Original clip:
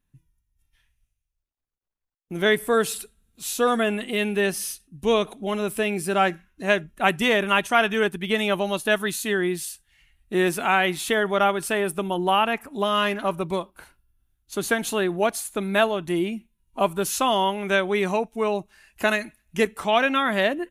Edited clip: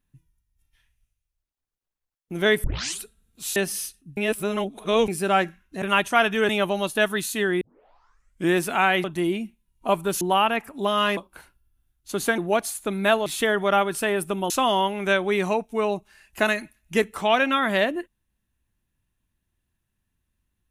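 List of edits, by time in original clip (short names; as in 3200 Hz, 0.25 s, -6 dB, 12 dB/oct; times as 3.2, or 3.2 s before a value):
2.64 tape start 0.36 s
3.56–4.42 cut
5.03–5.94 reverse
6.68–7.41 cut
8.08–8.39 cut
9.51 tape start 0.93 s
10.94–12.18 swap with 15.96–17.13
13.14–13.6 cut
14.81–15.08 cut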